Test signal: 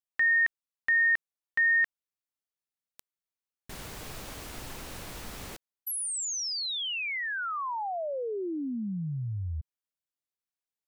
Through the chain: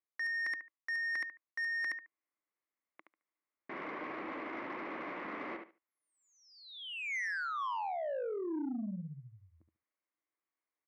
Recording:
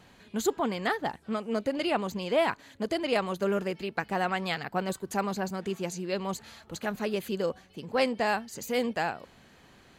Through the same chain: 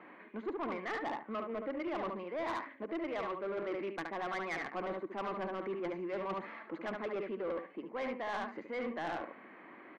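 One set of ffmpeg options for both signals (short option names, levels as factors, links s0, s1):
-af "highpass=f=220:w=0.5412,highpass=f=220:w=1.3066,equalizer=f=320:t=q:w=4:g=10,equalizer=f=590:t=q:w=4:g=4,equalizer=f=1100:t=q:w=4:g=9,equalizer=f=2100:t=q:w=4:g=10,lowpass=f=2200:w=0.5412,lowpass=f=2200:w=1.3066,aecho=1:1:72|144|216:0.447|0.0804|0.0145,areverse,acompressor=threshold=0.0251:ratio=10:attack=31:release=473:knee=6:detection=peak,areverse,asoftclip=type=tanh:threshold=0.0251"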